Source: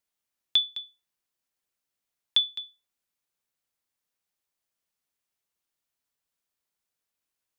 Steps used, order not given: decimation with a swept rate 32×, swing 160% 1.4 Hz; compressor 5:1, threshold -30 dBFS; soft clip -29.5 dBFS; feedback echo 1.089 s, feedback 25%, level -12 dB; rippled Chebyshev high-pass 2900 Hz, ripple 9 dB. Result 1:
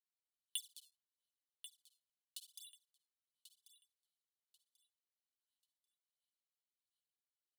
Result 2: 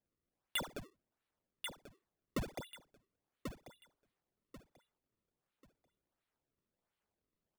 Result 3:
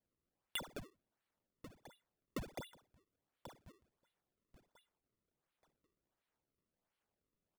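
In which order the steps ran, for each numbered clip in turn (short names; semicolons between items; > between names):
decimation with a swept rate > compressor > rippled Chebyshev high-pass > soft clip > feedback echo; rippled Chebyshev high-pass > decimation with a swept rate > feedback echo > compressor > soft clip; compressor > rippled Chebyshev high-pass > soft clip > feedback echo > decimation with a swept rate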